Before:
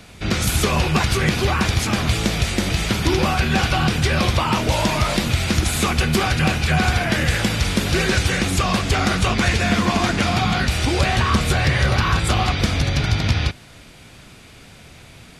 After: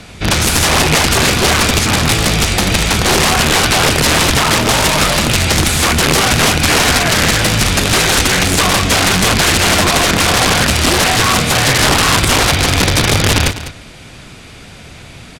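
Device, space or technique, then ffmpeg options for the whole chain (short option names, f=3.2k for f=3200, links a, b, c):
overflowing digital effects unit: -filter_complex "[0:a]asettb=1/sr,asplit=3[a][b][c];[a]atrim=end=11.074[d];[b]atrim=start=11.07:end=11.78,asetpts=PTS-STARTPTS,afade=t=in:d=0.004:c=qsin,afade=t=out:st=0.706:d=0.004:c=qsin,highpass=f=100:w=0.5412,highpass=f=100:w=1.3066[e];[c]atrim=start=11.776[f];[d][e]acrossfade=d=0.004:c1=hsin:c2=qsin[g];[g][f]acrossfade=d=0.004:c1=qsin:c2=hsin,aeval=exprs='(mod(5.01*val(0)+1,2)-1)/5.01':c=same,lowpass=11k,aecho=1:1:201:0.224,volume=8.5dB"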